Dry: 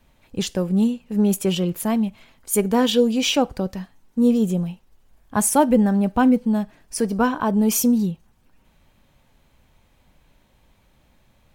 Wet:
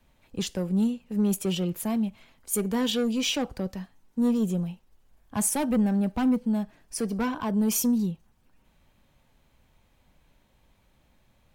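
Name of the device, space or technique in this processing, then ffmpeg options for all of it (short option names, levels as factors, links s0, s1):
one-band saturation: -filter_complex "[0:a]acrossover=split=260|3200[s0][s1][s2];[s1]asoftclip=type=tanh:threshold=0.0841[s3];[s0][s3][s2]amix=inputs=3:normalize=0,volume=0.562"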